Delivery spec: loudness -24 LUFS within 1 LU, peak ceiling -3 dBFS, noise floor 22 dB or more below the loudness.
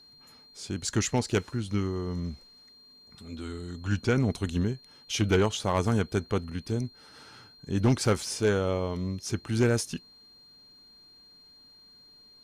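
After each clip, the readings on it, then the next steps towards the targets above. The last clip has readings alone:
clipped samples 0.4%; clipping level -16.5 dBFS; steady tone 4.2 kHz; tone level -53 dBFS; loudness -29.0 LUFS; peak level -16.5 dBFS; loudness target -24.0 LUFS
-> clip repair -16.5 dBFS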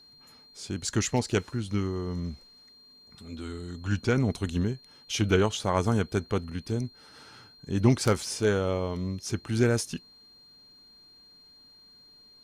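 clipped samples 0.0%; steady tone 4.2 kHz; tone level -53 dBFS
-> band-stop 4.2 kHz, Q 30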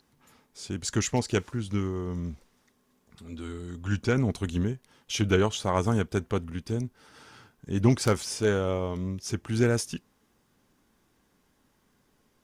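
steady tone not found; loudness -28.5 LUFS; peak level -8.0 dBFS; loudness target -24.0 LUFS
-> trim +4.5 dB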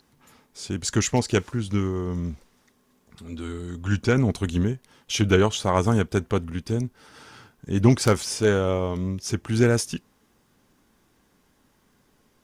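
loudness -24.0 LUFS; peak level -3.5 dBFS; noise floor -65 dBFS

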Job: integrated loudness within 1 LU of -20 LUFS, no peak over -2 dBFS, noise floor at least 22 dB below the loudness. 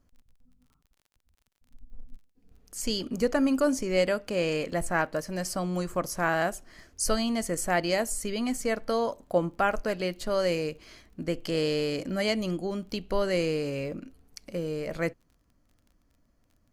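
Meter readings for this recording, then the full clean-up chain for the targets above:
tick rate 27 per s; loudness -29.0 LUFS; peak level -11.5 dBFS; loudness target -20.0 LUFS
-> de-click; trim +9 dB

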